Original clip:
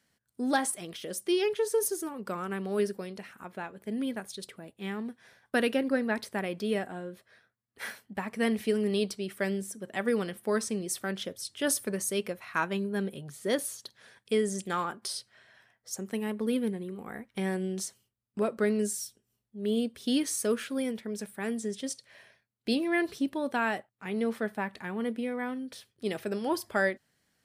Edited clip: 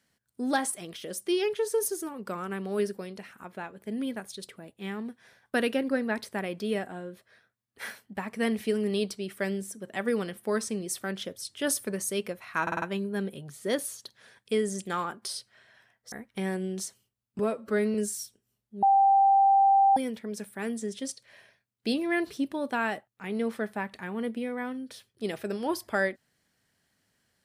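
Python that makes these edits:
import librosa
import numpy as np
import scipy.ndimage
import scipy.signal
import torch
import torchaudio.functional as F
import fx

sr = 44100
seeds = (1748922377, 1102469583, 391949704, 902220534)

y = fx.edit(x, sr, fx.stutter(start_s=12.62, slice_s=0.05, count=5),
    fx.cut(start_s=15.92, length_s=1.2),
    fx.stretch_span(start_s=18.39, length_s=0.37, factor=1.5),
    fx.bleep(start_s=19.64, length_s=1.14, hz=786.0, db=-17.0), tone=tone)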